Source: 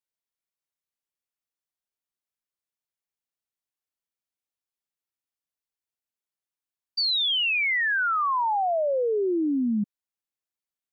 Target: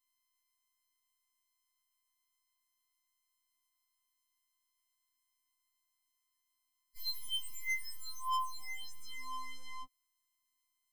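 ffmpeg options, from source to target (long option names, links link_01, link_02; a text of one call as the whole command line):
ffmpeg -i in.wav -af "aeval=exprs='(tanh(316*val(0)+0.35)-tanh(0.35))/316':channel_layout=same,afftfilt=real='hypot(re,im)*cos(PI*b)':imag='0':win_size=512:overlap=0.75,afftfilt=real='re*3.46*eq(mod(b,12),0)':imag='im*3.46*eq(mod(b,12),0)':win_size=2048:overlap=0.75,volume=10.5dB" out.wav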